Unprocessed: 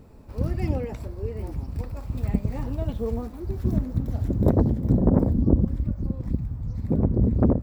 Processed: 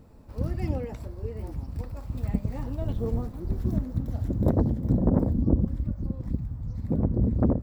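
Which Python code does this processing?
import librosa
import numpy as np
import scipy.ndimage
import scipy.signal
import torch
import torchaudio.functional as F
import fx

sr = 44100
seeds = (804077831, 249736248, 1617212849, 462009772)

y = fx.octave_divider(x, sr, octaves=1, level_db=1.0, at=(2.82, 3.63))
y = fx.peak_eq(y, sr, hz=2400.0, db=-3.0, octaves=0.27)
y = fx.notch(y, sr, hz=400.0, q=12.0)
y = y * 10.0 ** (-3.0 / 20.0)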